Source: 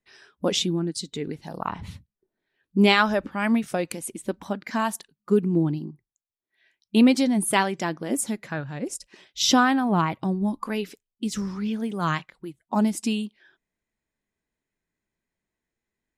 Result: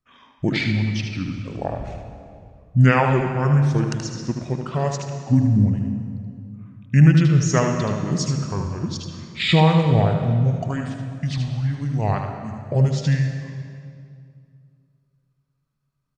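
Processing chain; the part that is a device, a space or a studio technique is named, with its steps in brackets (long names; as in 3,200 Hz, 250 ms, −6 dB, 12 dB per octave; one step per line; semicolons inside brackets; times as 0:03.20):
monster voice (pitch shifter −8 semitones; low-shelf EQ 200 Hz +6 dB; single-tap delay 77 ms −6.5 dB; convolution reverb RT60 2.3 s, pre-delay 91 ms, DRR 6.5 dB)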